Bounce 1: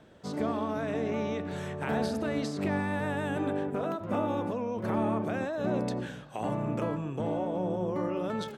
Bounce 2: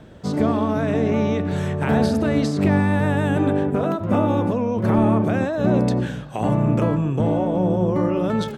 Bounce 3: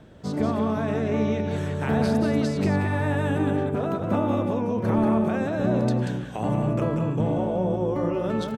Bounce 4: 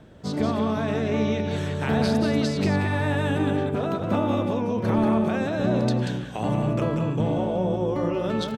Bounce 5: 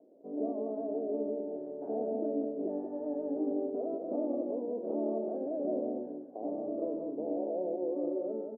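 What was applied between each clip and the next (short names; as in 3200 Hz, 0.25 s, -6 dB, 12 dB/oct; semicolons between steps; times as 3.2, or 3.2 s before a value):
low shelf 200 Hz +10.5 dB; gain +8 dB
echo 0.186 s -5.5 dB; gain -5 dB
dynamic EQ 3900 Hz, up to +7 dB, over -52 dBFS, Q 0.93
Chebyshev band-pass 270–680 Hz, order 3; gain -6.5 dB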